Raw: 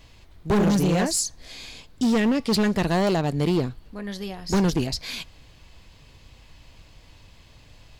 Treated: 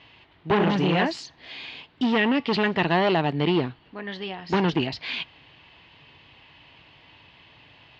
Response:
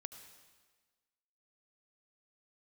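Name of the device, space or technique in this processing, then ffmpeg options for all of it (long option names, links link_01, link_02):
kitchen radio: -af "highpass=160,equalizer=frequency=210:width_type=q:width=4:gain=-6,equalizer=frequency=520:width_type=q:width=4:gain=-5,equalizer=frequency=890:width_type=q:width=4:gain=4,equalizer=frequency=1900:width_type=q:width=4:gain=4,equalizer=frequency=2900:width_type=q:width=4:gain=7,lowpass=frequency=3700:width=0.5412,lowpass=frequency=3700:width=1.3066,volume=2dB"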